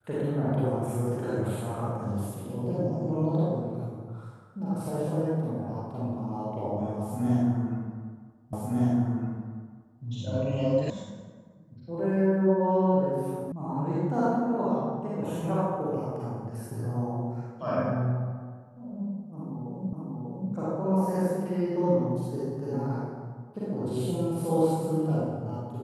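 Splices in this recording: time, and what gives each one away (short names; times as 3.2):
8.53 repeat of the last 1.51 s
10.9 sound cut off
13.52 sound cut off
19.93 repeat of the last 0.59 s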